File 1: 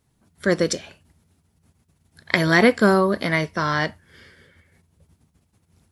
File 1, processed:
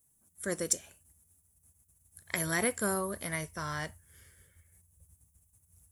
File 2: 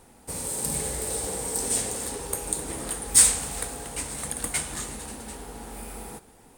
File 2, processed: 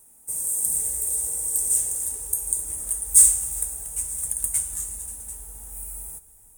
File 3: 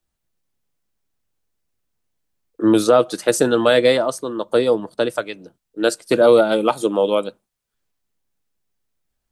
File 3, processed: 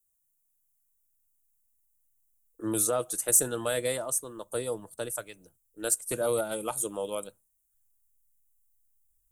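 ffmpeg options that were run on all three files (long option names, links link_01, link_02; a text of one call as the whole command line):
ffmpeg -i in.wav -af "asubboost=boost=8:cutoff=86,aexciter=amount=8.3:drive=8.4:freq=6700,volume=-14.5dB" out.wav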